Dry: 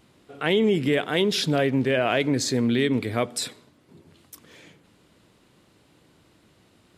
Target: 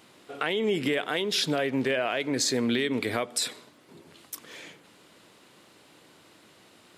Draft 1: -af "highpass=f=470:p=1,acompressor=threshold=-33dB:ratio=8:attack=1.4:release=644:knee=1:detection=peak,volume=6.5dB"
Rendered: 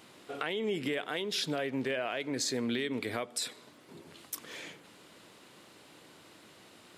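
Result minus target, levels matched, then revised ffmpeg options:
compressor: peak gain reduction +6.5 dB
-af "highpass=f=470:p=1,acompressor=threshold=-25.5dB:ratio=8:attack=1.4:release=644:knee=1:detection=peak,volume=6.5dB"

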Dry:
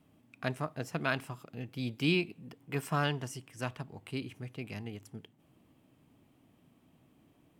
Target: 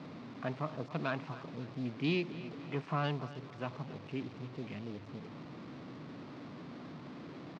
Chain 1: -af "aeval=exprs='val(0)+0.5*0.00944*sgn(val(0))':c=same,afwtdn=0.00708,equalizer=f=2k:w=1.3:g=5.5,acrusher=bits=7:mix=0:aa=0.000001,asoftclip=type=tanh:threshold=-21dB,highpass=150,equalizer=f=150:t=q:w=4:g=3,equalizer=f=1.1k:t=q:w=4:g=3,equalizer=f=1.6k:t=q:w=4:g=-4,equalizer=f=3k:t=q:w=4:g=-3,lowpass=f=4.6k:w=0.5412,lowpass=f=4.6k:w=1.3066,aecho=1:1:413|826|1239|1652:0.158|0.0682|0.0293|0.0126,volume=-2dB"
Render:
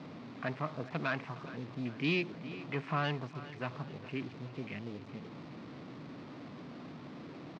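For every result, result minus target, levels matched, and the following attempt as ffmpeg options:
echo 0.142 s late; 2000 Hz band +3.5 dB
-af "aeval=exprs='val(0)+0.5*0.00944*sgn(val(0))':c=same,afwtdn=0.00708,equalizer=f=2k:w=1.3:g=5.5,acrusher=bits=7:mix=0:aa=0.000001,asoftclip=type=tanh:threshold=-21dB,highpass=150,equalizer=f=150:t=q:w=4:g=3,equalizer=f=1.1k:t=q:w=4:g=3,equalizer=f=1.6k:t=q:w=4:g=-4,equalizer=f=3k:t=q:w=4:g=-3,lowpass=f=4.6k:w=0.5412,lowpass=f=4.6k:w=1.3066,aecho=1:1:271|542|813|1084:0.158|0.0682|0.0293|0.0126,volume=-2dB"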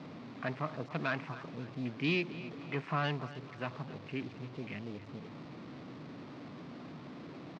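2000 Hz band +3.5 dB
-af "aeval=exprs='val(0)+0.5*0.00944*sgn(val(0))':c=same,afwtdn=0.00708,equalizer=f=2k:w=1.3:g=-2,acrusher=bits=7:mix=0:aa=0.000001,asoftclip=type=tanh:threshold=-21dB,highpass=150,equalizer=f=150:t=q:w=4:g=3,equalizer=f=1.1k:t=q:w=4:g=3,equalizer=f=1.6k:t=q:w=4:g=-4,equalizer=f=3k:t=q:w=4:g=-3,lowpass=f=4.6k:w=0.5412,lowpass=f=4.6k:w=1.3066,aecho=1:1:271|542|813|1084:0.158|0.0682|0.0293|0.0126,volume=-2dB"

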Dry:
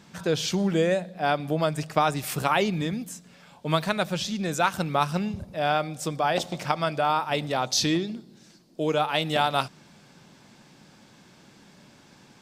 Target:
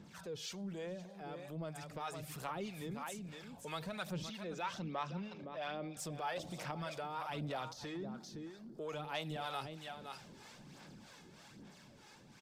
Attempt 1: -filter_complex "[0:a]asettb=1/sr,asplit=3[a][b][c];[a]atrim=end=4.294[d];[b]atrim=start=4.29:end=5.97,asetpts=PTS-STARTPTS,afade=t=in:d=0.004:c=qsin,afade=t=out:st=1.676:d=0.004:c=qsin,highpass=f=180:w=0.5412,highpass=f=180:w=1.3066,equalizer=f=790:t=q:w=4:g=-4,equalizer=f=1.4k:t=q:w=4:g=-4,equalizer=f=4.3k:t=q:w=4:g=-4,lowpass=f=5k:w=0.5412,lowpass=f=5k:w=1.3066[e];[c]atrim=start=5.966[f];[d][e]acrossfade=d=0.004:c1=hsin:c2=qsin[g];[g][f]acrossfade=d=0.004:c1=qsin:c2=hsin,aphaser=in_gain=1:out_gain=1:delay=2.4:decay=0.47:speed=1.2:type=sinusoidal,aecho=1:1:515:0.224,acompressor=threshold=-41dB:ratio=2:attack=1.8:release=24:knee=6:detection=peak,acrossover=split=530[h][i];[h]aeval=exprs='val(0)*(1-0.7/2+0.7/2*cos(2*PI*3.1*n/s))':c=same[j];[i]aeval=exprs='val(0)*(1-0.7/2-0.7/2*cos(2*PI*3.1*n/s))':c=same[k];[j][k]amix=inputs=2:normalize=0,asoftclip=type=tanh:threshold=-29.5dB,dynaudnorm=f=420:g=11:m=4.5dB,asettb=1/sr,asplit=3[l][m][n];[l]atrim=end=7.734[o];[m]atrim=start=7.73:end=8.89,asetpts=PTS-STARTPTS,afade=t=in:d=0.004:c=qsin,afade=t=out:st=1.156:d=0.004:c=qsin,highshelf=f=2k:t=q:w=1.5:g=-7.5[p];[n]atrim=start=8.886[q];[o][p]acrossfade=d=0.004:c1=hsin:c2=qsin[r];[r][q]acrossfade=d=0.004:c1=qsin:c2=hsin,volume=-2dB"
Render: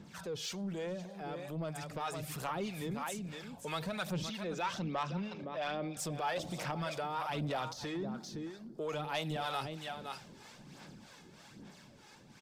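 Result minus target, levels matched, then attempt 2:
compressor: peak gain reduction -5.5 dB
-filter_complex "[0:a]asettb=1/sr,asplit=3[a][b][c];[a]atrim=end=4.294[d];[b]atrim=start=4.29:end=5.97,asetpts=PTS-STARTPTS,afade=t=in:d=0.004:c=qsin,afade=t=out:st=1.676:d=0.004:c=qsin,highpass=f=180:w=0.5412,highpass=f=180:w=1.3066,equalizer=f=790:t=q:w=4:g=-4,equalizer=f=1.4k:t=q:w=4:g=-4,equalizer=f=4.3k:t=q:w=4:g=-4,lowpass=f=5k:w=0.5412,lowpass=f=5k:w=1.3066[e];[c]atrim=start=5.966[f];[d][e]acrossfade=d=0.004:c1=hsin:c2=qsin[g];[g][f]acrossfade=d=0.004:c1=qsin:c2=hsin,aphaser=in_gain=1:out_gain=1:delay=2.4:decay=0.47:speed=1.2:type=sinusoidal,aecho=1:1:515:0.224,acompressor=threshold=-52dB:ratio=2:attack=1.8:release=24:knee=6:detection=peak,acrossover=split=530[h][i];[h]aeval=exprs='val(0)*(1-0.7/2+0.7/2*cos(2*PI*3.1*n/s))':c=same[j];[i]aeval=exprs='val(0)*(1-0.7/2-0.7/2*cos(2*PI*3.1*n/s))':c=same[k];[j][k]amix=inputs=2:normalize=0,asoftclip=type=tanh:threshold=-29.5dB,dynaudnorm=f=420:g=11:m=4.5dB,asettb=1/sr,asplit=3[l][m][n];[l]atrim=end=7.734[o];[m]atrim=start=7.73:end=8.89,asetpts=PTS-STARTPTS,afade=t=in:d=0.004:c=qsin,afade=t=out:st=1.156:d=0.004:c=qsin,highshelf=f=2k:t=q:w=1.5:g=-7.5[p];[n]atrim=start=8.886[q];[o][p]acrossfade=d=0.004:c1=hsin:c2=qsin[r];[r][q]acrossfade=d=0.004:c1=qsin:c2=hsin,volume=-2dB"

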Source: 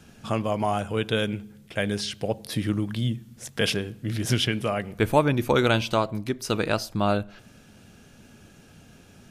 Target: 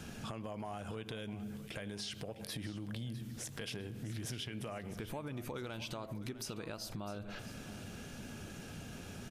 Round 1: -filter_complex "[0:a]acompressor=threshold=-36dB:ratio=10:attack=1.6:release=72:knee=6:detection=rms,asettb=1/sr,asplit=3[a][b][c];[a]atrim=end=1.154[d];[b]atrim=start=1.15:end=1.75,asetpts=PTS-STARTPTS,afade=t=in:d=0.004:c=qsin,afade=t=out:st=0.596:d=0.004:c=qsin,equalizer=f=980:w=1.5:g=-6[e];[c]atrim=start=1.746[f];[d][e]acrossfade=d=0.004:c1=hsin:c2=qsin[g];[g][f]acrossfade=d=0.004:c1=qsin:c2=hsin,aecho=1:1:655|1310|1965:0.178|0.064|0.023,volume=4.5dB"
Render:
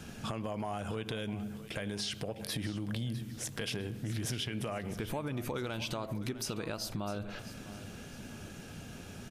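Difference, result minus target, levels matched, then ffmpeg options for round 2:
compressor: peak gain reduction -6 dB
-filter_complex "[0:a]acompressor=threshold=-42.5dB:ratio=10:attack=1.6:release=72:knee=6:detection=rms,asettb=1/sr,asplit=3[a][b][c];[a]atrim=end=1.154[d];[b]atrim=start=1.15:end=1.75,asetpts=PTS-STARTPTS,afade=t=in:d=0.004:c=qsin,afade=t=out:st=0.596:d=0.004:c=qsin,equalizer=f=980:w=1.5:g=-6[e];[c]atrim=start=1.746[f];[d][e]acrossfade=d=0.004:c1=hsin:c2=qsin[g];[g][f]acrossfade=d=0.004:c1=qsin:c2=hsin,aecho=1:1:655|1310|1965:0.178|0.064|0.023,volume=4.5dB"

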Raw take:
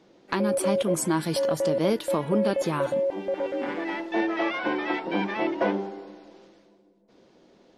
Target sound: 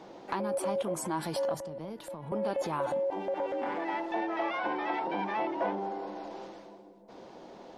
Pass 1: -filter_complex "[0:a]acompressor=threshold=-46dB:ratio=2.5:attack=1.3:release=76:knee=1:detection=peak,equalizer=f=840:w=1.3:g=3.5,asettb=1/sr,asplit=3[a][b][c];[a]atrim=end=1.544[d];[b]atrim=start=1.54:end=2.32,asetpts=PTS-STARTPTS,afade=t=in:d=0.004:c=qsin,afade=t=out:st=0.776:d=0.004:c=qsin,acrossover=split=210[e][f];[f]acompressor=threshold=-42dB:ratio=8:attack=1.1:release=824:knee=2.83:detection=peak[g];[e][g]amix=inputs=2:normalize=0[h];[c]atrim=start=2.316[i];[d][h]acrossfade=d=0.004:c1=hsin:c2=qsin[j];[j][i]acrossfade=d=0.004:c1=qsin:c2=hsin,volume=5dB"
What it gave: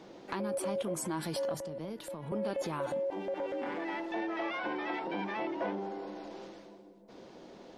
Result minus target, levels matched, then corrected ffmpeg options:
1000 Hz band -3.0 dB
-filter_complex "[0:a]acompressor=threshold=-46dB:ratio=2.5:attack=1.3:release=76:knee=1:detection=peak,equalizer=f=840:w=1.3:g=10.5,asettb=1/sr,asplit=3[a][b][c];[a]atrim=end=1.544[d];[b]atrim=start=1.54:end=2.32,asetpts=PTS-STARTPTS,afade=t=in:d=0.004:c=qsin,afade=t=out:st=0.776:d=0.004:c=qsin,acrossover=split=210[e][f];[f]acompressor=threshold=-42dB:ratio=8:attack=1.1:release=824:knee=2.83:detection=peak[g];[e][g]amix=inputs=2:normalize=0[h];[c]atrim=start=2.316[i];[d][h]acrossfade=d=0.004:c1=hsin:c2=qsin[j];[j][i]acrossfade=d=0.004:c1=qsin:c2=hsin,volume=5dB"

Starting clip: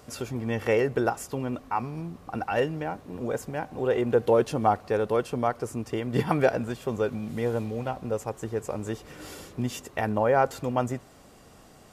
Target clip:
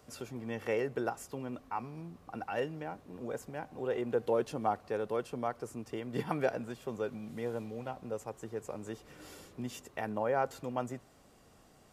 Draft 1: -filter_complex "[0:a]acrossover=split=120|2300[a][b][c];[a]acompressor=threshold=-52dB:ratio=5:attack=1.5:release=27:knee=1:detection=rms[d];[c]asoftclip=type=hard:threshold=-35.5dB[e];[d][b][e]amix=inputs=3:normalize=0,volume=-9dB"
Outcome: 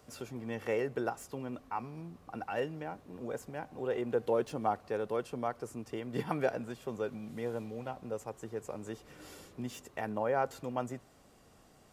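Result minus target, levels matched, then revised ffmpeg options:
hard clip: distortion +23 dB
-filter_complex "[0:a]acrossover=split=120|2300[a][b][c];[a]acompressor=threshold=-52dB:ratio=5:attack=1.5:release=27:knee=1:detection=rms[d];[c]asoftclip=type=hard:threshold=-27.5dB[e];[d][b][e]amix=inputs=3:normalize=0,volume=-9dB"

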